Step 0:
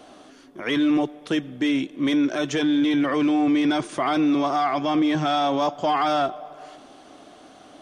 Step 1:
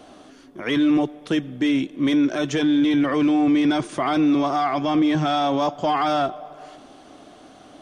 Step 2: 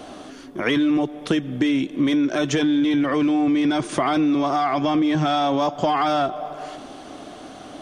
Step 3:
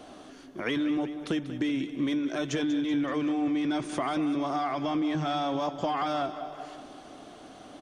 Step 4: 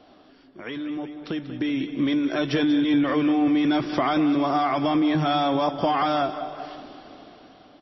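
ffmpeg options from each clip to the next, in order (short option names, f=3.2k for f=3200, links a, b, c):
-af "lowshelf=f=210:g=6"
-af "acompressor=threshold=-25dB:ratio=6,volume=7.5dB"
-af "aecho=1:1:190|380|570|760|950|1140:0.224|0.121|0.0653|0.0353|0.019|0.0103,volume=-9dB"
-af "dynaudnorm=f=670:g=5:m=13dB,volume=-5dB" -ar 16000 -c:a libmp3lame -b:a 24k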